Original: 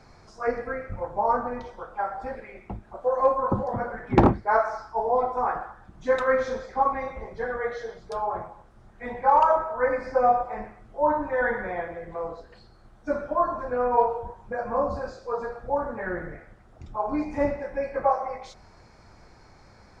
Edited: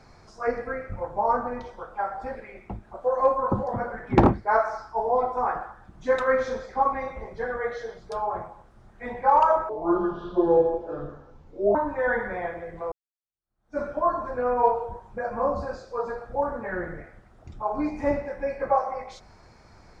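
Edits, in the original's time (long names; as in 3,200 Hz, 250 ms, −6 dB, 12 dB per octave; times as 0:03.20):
0:09.69–0:11.09: play speed 68%
0:12.26–0:13.14: fade in exponential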